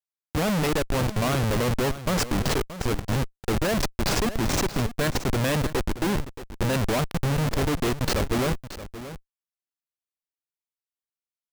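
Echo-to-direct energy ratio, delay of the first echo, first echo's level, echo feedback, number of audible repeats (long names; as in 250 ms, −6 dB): −13.5 dB, 626 ms, −13.5 dB, repeats not evenly spaced, 1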